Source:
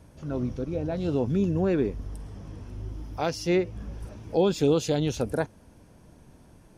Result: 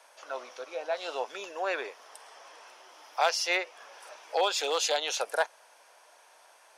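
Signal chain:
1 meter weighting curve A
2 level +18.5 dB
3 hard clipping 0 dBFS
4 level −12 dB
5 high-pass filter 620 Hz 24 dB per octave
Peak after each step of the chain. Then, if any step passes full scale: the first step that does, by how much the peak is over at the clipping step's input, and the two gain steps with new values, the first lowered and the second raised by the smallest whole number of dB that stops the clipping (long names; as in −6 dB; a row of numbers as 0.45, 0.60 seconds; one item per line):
−14.0, +4.5, 0.0, −12.0, −12.0 dBFS
step 2, 4.5 dB
step 2 +13.5 dB, step 4 −7 dB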